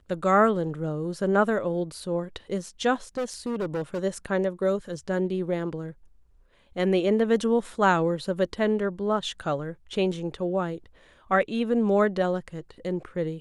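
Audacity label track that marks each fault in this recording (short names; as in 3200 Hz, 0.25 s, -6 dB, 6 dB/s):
3.170000	3.990000	clipped -25 dBFS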